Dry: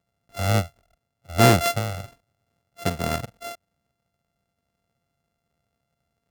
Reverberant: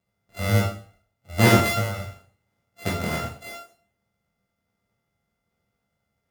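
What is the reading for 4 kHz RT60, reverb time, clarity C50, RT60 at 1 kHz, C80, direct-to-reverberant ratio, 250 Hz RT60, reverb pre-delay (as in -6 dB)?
0.45 s, 0.45 s, 6.0 dB, 0.45 s, 10.5 dB, -4.5 dB, 0.50 s, 4 ms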